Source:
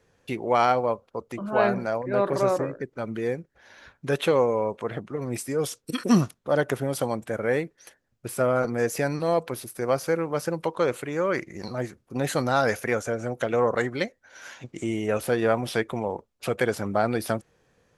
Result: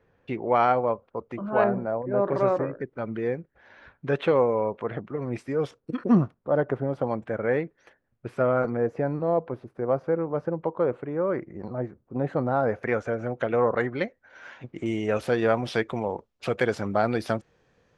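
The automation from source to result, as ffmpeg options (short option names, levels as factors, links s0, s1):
-af "asetnsamples=n=441:p=0,asendcmd='1.64 lowpass f 1000;2.28 lowpass f 2400;5.71 lowpass f 1200;7.07 lowpass f 2100;8.77 lowpass f 1000;12.83 lowpass f 2400;14.86 lowpass f 5300',lowpass=2200"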